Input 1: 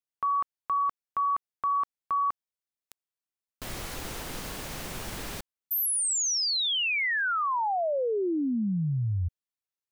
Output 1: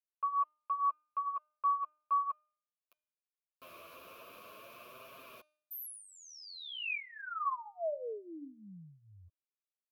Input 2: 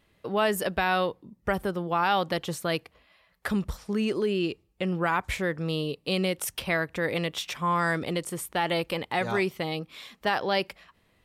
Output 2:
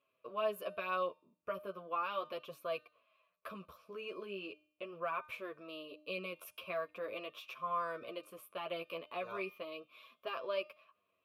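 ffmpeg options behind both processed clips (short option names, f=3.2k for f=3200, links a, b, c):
-filter_complex "[0:a]asuperstop=centerf=770:order=4:qfactor=2.7,aexciter=amount=8.7:drive=8.1:freq=11k,asplit=3[a][b][c];[a]bandpass=f=730:t=q:w=8,volume=0dB[d];[b]bandpass=f=1.09k:t=q:w=8,volume=-6dB[e];[c]bandpass=f=2.44k:t=q:w=8,volume=-9dB[f];[d][e][f]amix=inputs=3:normalize=0,flanger=delay=7.2:depth=4.9:regen=2:speed=0.39:shape=triangular,bandreject=f=304:t=h:w=4,bandreject=f=608:t=h:w=4,bandreject=f=912:t=h:w=4,bandreject=f=1.216k:t=h:w=4,bandreject=f=1.52k:t=h:w=4,bandreject=f=1.824k:t=h:w=4,bandreject=f=2.128k:t=h:w=4,bandreject=f=2.432k:t=h:w=4,bandreject=f=2.736k:t=h:w=4,bandreject=f=3.04k:t=h:w=4,bandreject=f=3.344k:t=h:w=4,bandreject=f=3.648k:t=h:w=4,bandreject=f=3.952k:t=h:w=4,bandreject=f=4.256k:t=h:w=4,bandreject=f=4.56k:t=h:w=4,bandreject=f=4.864k:t=h:w=4,bandreject=f=5.168k:t=h:w=4,bandreject=f=5.472k:t=h:w=4,bandreject=f=5.776k:t=h:w=4,bandreject=f=6.08k:t=h:w=4,bandreject=f=6.384k:t=h:w=4,bandreject=f=6.688k:t=h:w=4,bandreject=f=6.992k:t=h:w=4,bandreject=f=7.296k:t=h:w=4,bandreject=f=7.6k:t=h:w=4,bandreject=f=7.904k:t=h:w=4,bandreject=f=8.208k:t=h:w=4,bandreject=f=8.512k:t=h:w=4,bandreject=f=8.816k:t=h:w=4,bandreject=f=9.12k:t=h:w=4,bandreject=f=9.424k:t=h:w=4,bandreject=f=9.728k:t=h:w=4,bandreject=f=10.032k:t=h:w=4,bandreject=f=10.336k:t=h:w=4,bandreject=f=10.64k:t=h:w=4,bandreject=f=10.944k:t=h:w=4,bandreject=f=11.248k:t=h:w=4,volume=4.5dB"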